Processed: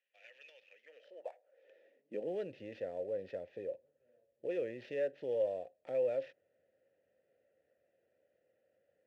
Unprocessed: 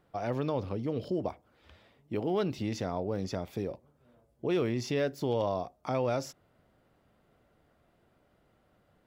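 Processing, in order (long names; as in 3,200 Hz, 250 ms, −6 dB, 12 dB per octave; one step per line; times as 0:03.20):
high-pass filter sweep 2,700 Hz → 79 Hz, 0:00.62–0:02.69
sample-rate reduction 9,000 Hz, jitter 20%
formant filter e
high-shelf EQ 7,700 Hz −11.5 dB
level +2 dB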